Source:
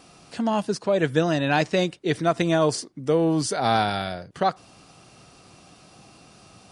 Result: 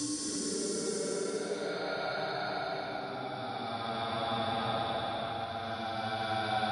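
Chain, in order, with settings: tremolo 10 Hz, depth 80%; slow attack 151 ms; de-hum 98.76 Hz, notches 27; Paulstretch 21×, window 0.10 s, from 3.47 s; on a send at -12 dB: reverberation RT60 2.6 s, pre-delay 39 ms; on the sum: three bands compressed up and down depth 70%; trim -3 dB

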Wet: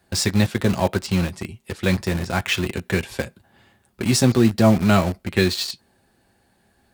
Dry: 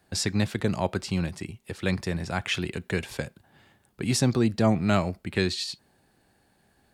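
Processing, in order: comb of notches 150 Hz; in parallel at -6.5 dB: bit crusher 5-bit; on the sum: trim +4 dB

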